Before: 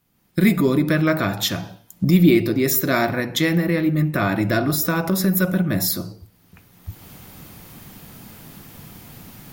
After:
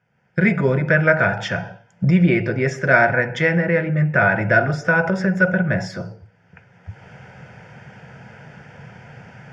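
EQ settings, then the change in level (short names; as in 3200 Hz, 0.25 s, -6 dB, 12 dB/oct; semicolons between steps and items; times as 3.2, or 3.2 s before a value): air absorption 72 m; speaker cabinet 110–5600 Hz, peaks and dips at 130 Hz +6 dB, 290 Hz +8 dB, 490 Hz +4 dB, 1000 Hz +9 dB, 1500 Hz +9 dB, 4300 Hz +4 dB; fixed phaser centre 1100 Hz, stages 6; +4.0 dB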